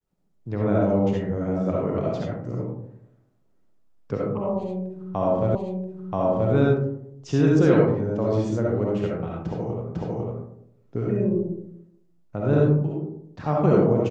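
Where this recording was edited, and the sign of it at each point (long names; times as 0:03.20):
0:05.55: the same again, the last 0.98 s
0:09.95: the same again, the last 0.5 s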